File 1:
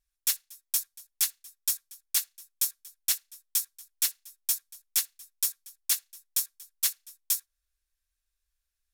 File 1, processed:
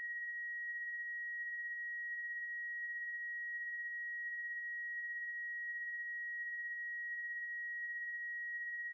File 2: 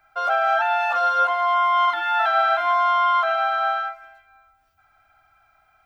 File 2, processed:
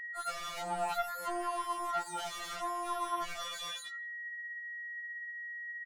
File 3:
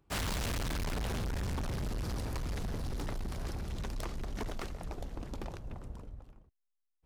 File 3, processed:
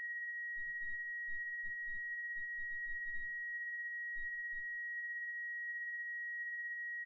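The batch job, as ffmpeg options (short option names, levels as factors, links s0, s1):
-filter_complex "[0:a]afftfilt=real='re*gte(hypot(re,im),0.282)':imag='im*gte(hypot(re,im),0.282)':win_size=1024:overlap=0.75,bandreject=f=60:t=h:w=6,bandreject=f=120:t=h:w=6,bandreject=f=180:t=h:w=6,bandreject=f=240:t=h:w=6,bandreject=f=300:t=h:w=6,bandreject=f=360:t=h:w=6,bandreject=f=420:t=h:w=6,bandreject=f=480:t=h:w=6,acrossover=split=480|3000[s0][s1][s2];[s1]acompressor=threshold=0.0708:ratio=10[s3];[s0][s3][s2]amix=inputs=3:normalize=0,aeval=exprs='val(0)+0.00355*sin(2*PI*1900*n/s)':c=same,equalizer=f=110:w=1.4:g=11.5,asplit=2[s4][s5];[s5]alimiter=level_in=1.06:limit=0.0631:level=0:latency=1:release=19,volume=0.944,volume=0.891[s6];[s4][s6]amix=inputs=2:normalize=0,asoftclip=type=tanh:threshold=0.0299,flanger=delay=8.9:depth=3.1:regen=63:speed=1.4:shape=triangular,acontrast=28,highshelf=f=7300:g=9.5,asplit=2[s7][s8];[s8]adelay=165,lowpass=f=1400:p=1,volume=0.0708,asplit=2[s9][s10];[s10]adelay=165,lowpass=f=1400:p=1,volume=0.28[s11];[s7][s9][s11]amix=inputs=3:normalize=0,afftfilt=real='re*2.83*eq(mod(b,8),0)':imag='im*2.83*eq(mod(b,8),0)':win_size=2048:overlap=0.75,volume=0.668"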